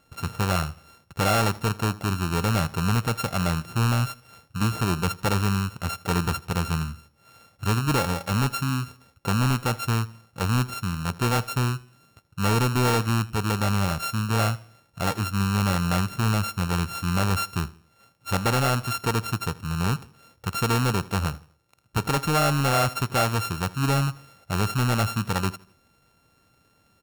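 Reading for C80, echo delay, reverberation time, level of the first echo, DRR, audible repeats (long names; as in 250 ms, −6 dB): no reverb audible, 80 ms, no reverb audible, −21.0 dB, no reverb audible, 2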